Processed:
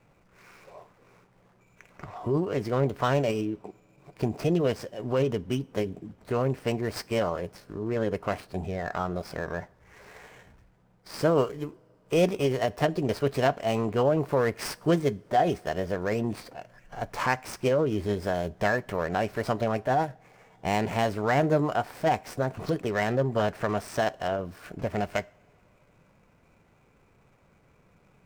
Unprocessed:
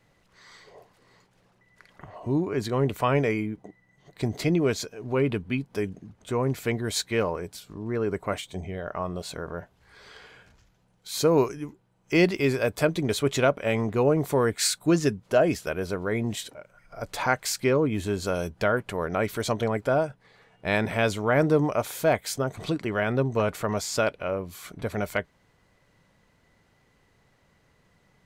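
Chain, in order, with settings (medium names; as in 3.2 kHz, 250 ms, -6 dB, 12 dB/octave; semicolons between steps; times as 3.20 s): median filter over 15 samples; in parallel at +2 dB: compression, threshold -31 dBFS, peak gain reduction 14 dB; on the sum: formant shift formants +3 st; two-slope reverb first 0.41 s, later 3 s, from -20 dB, DRR 19 dB; trim -4 dB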